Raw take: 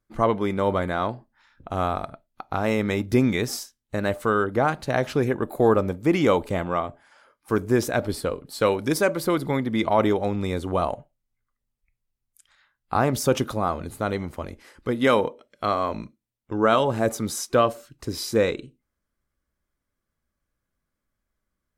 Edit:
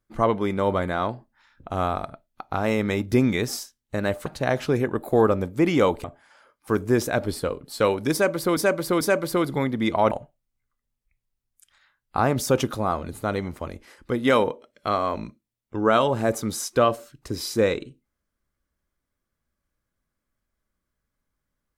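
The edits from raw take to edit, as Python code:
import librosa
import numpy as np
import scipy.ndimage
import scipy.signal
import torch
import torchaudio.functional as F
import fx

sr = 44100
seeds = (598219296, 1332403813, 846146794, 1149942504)

y = fx.edit(x, sr, fx.cut(start_s=4.26, length_s=0.47),
    fx.cut(start_s=6.51, length_s=0.34),
    fx.repeat(start_s=8.94, length_s=0.44, count=3),
    fx.cut(start_s=10.04, length_s=0.84), tone=tone)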